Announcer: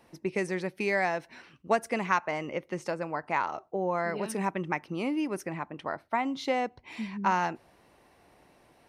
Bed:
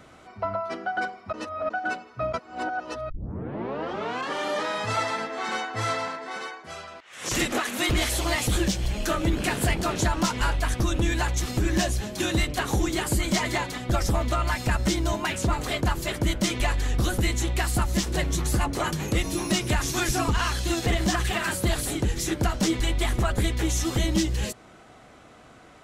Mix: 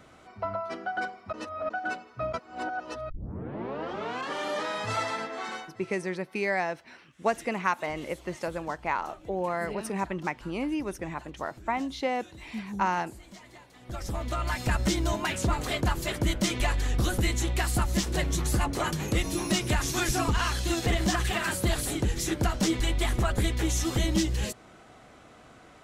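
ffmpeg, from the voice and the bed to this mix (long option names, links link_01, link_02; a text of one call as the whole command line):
ffmpeg -i stem1.wav -i stem2.wav -filter_complex "[0:a]adelay=5550,volume=-0.5dB[link_01];[1:a]volume=19dB,afade=type=out:start_time=5.35:duration=0.43:silence=0.0891251,afade=type=in:start_time=13.72:duration=1.02:silence=0.0749894[link_02];[link_01][link_02]amix=inputs=2:normalize=0" out.wav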